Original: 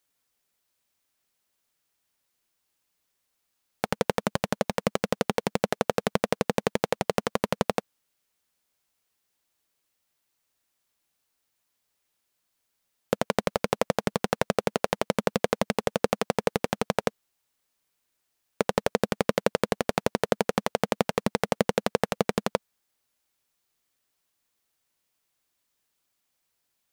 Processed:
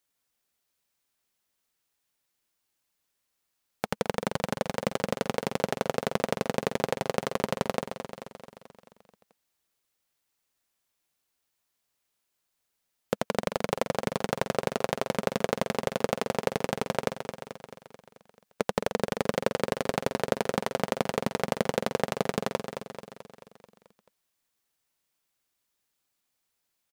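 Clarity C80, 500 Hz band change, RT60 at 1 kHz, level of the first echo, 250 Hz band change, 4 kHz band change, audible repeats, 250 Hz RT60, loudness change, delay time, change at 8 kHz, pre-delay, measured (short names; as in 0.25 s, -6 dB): none, -2.0 dB, none, -8.5 dB, -3.0 dB, -2.0 dB, 6, none, -2.5 dB, 0.218 s, -2.0 dB, none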